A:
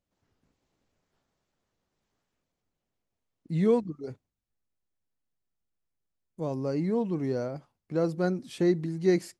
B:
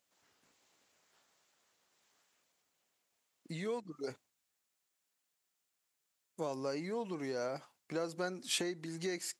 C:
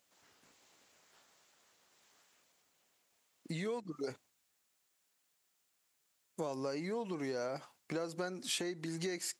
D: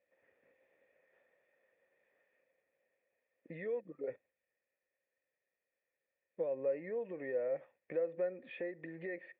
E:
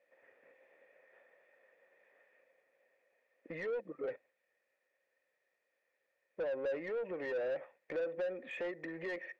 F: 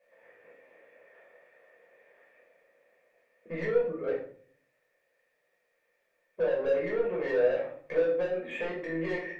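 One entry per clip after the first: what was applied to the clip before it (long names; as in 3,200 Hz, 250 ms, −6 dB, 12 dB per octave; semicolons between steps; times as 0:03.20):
downward compressor 16 to 1, threshold −33 dBFS, peak gain reduction 15.5 dB; high-pass filter 1,400 Hz 6 dB per octave; parametric band 7,300 Hz +4 dB 0.31 octaves; level +10.5 dB
downward compressor 2.5 to 1, threshold −43 dBFS, peak gain reduction 9 dB; level +5.5 dB
formant resonators in series e; level +9 dB
mid-hump overdrive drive 21 dB, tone 1,800 Hz, clips at −26 dBFS; level −3.5 dB
rectangular room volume 550 cubic metres, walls furnished, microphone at 5.4 metres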